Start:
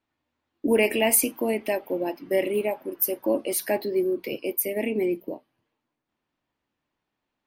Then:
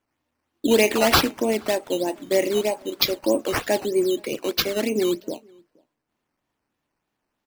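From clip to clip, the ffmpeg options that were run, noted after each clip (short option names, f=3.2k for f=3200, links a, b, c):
-filter_complex "[0:a]acrusher=samples=9:mix=1:aa=0.000001:lfo=1:lforange=9:lforate=3.2,asplit=2[a][b];[b]adelay=472.3,volume=-29dB,highshelf=f=4k:g=-10.6[c];[a][c]amix=inputs=2:normalize=0,volume=3dB"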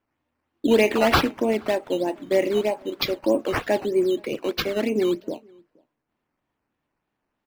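-af "bass=f=250:g=1,treble=f=4k:g=-11"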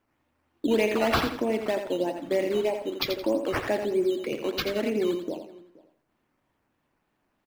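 -af "acompressor=threshold=-43dB:ratio=1.5,aecho=1:1:85|170|255|340:0.422|0.122|0.0355|0.0103,volume=4dB"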